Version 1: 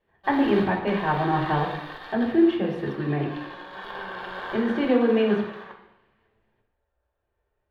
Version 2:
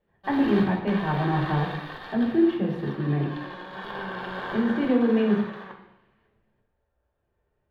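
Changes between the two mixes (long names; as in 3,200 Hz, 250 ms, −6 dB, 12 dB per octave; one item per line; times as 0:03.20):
speech −6.0 dB
master: add parametric band 170 Hz +9.5 dB 1.7 octaves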